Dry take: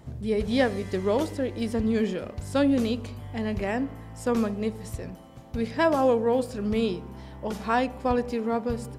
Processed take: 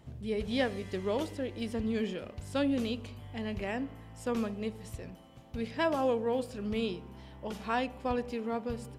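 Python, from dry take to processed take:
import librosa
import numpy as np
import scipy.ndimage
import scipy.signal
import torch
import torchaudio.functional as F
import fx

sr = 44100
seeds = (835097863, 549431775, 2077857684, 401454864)

y = fx.peak_eq(x, sr, hz=2900.0, db=6.0, octaves=0.72)
y = y * 10.0 ** (-7.5 / 20.0)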